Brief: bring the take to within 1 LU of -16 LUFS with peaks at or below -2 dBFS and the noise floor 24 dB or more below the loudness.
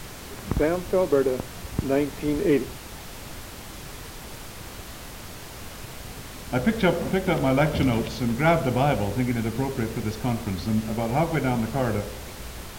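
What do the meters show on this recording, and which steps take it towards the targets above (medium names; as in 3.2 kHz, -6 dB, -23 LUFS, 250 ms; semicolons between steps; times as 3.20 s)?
noise floor -40 dBFS; noise floor target -49 dBFS; loudness -25.0 LUFS; peak level -8.0 dBFS; loudness target -16.0 LUFS
-> noise print and reduce 9 dB; trim +9 dB; peak limiter -2 dBFS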